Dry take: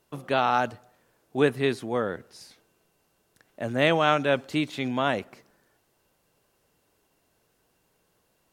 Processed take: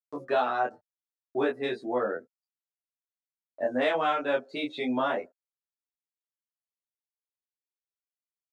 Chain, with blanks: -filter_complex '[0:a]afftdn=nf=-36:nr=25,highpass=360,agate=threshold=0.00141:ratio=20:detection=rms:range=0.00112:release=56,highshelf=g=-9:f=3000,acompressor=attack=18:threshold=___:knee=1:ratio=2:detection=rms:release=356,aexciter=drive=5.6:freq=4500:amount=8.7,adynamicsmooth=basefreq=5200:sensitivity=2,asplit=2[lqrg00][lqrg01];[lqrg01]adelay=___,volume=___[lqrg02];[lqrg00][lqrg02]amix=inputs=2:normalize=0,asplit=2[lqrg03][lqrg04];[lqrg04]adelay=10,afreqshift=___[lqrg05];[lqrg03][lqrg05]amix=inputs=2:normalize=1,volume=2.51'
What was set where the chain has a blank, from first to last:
0.02, 24, 0.708, 2.7